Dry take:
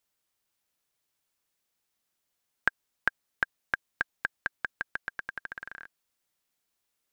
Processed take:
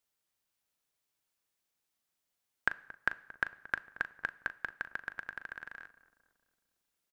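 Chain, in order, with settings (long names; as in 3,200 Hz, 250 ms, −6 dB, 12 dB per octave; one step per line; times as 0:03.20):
double-tracking delay 39 ms −13 dB
feedback echo with a low-pass in the loop 227 ms, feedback 57%, low-pass 1,300 Hz, level −15.5 dB
dense smooth reverb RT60 0.86 s, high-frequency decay 0.85×, DRR 19 dB
level −4 dB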